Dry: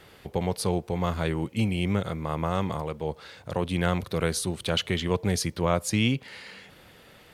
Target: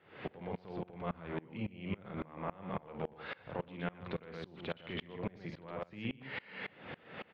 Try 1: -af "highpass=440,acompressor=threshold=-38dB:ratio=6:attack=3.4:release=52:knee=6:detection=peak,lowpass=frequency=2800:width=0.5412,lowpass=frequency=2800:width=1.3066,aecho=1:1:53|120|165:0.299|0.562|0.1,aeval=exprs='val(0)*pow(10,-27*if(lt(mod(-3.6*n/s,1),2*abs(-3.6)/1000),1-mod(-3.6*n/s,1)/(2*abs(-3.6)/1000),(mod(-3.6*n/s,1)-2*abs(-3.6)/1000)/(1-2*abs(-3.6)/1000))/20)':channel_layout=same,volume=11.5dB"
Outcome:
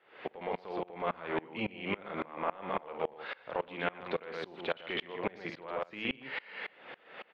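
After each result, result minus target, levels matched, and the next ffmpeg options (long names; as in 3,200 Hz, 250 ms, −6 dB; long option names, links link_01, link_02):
125 Hz band −10.5 dB; downward compressor: peak gain reduction −7 dB
-af "highpass=130,acompressor=threshold=-38dB:ratio=6:attack=3.4:release=52:knee=6:detection=peak,lowpass=frequency=2800:width=0.5412,lowpass=frequency=2800:width=1.3066,aecho=1:1:53|120|165:0.299|0.562|0.1,aeval=exprs='val(0)*pow(10,-27*if(lt(mod(-3.6*n/s,1),2*abs(-3.6)/1000),1-mod(-3.6*n/s,1)/(2*abs(-3.6)/1000),(mod(-3.6*n/s,1)-2*abs(-3.6)/1000)/(1-2*abs(-3.6)/1000))/20)':channel_layout=same,volume=11.5dB"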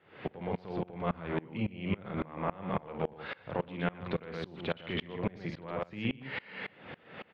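downward compressor: peak gain reduction −6 dB
-af "highpass=130,acompressor=threshold=-45.5dB:ratio=6:attack=3.4:release=52:knee=6:detection=peak,lowpass=frequency=2800:width=0.5412,lowpass=frequency=2800:width=1.3066,aecho=1:1:53|120|165:0.299|0.562|0.1,aeval=exprs='val(0)*pow(10,-27*if(lt(mod(-3.6*n/s,1),2*abs(-3.6)/1000),1-mod(-3.6*n/s,1)/(2*abs(-3.6)/1000),(mod(-3.6*n/s,1)-2*abs(-3.6)/1000)/(1-2*abs(-3.6)/1000))/20)':channel_layout=same,volume=11.5dB"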